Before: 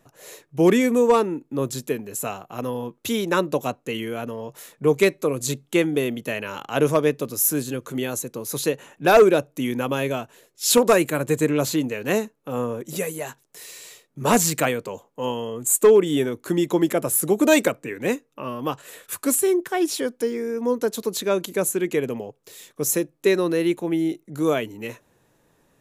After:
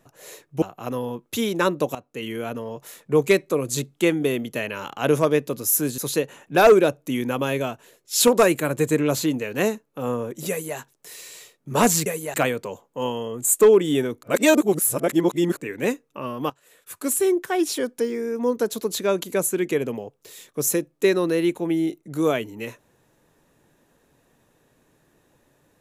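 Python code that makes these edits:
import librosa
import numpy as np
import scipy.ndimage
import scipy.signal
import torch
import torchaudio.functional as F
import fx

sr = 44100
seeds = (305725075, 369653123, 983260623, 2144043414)

y = fx.edit(x, sr, fx.cut(start_s=0.62, length_s=1.72),
    fx.fade_in_from(start_s=3.67, length_s=0.44, floor_db=-15.0),
    fx.cut(start_s=7.7, length_s=0.78),
    fx.duplicate(start_s=12.99, length_s=0.28, to_s=14.56),
    fx.reverse_span(start_s=16.45, length_s=1.34),
    fx.fade_in_from(start_s=18.72, length_s=0.75, curve='qua', floor_db=-16.0), tone=tone)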